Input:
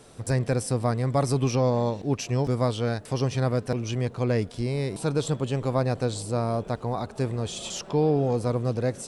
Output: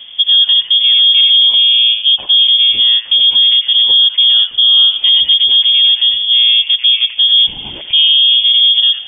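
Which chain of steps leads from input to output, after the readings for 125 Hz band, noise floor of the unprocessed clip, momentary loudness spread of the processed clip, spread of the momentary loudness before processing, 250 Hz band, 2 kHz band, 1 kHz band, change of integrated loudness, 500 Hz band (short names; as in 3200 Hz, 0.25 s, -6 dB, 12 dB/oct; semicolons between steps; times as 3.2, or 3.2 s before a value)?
under -20 dB, -45 dBFS, 3 LU, 6 LU, under -15 dB, +13.0 dB, under -10 dB, +20.0 dB, under -20 dB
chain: low shelf 240 Hz +10.5 dB; in parallel at +1 dB: compressor, threshold -25 dBFS, peak gain reduction 12 dB; on the sum: bell 130 Hz +12.5 dB 0.66 oct; on a send: band-limited delay 90 ms, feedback 30%, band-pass 1000 Hz, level -5.5 dB; on the sum: inverted band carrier 3400 Hz; maximiser +2 dB; gain -1 dB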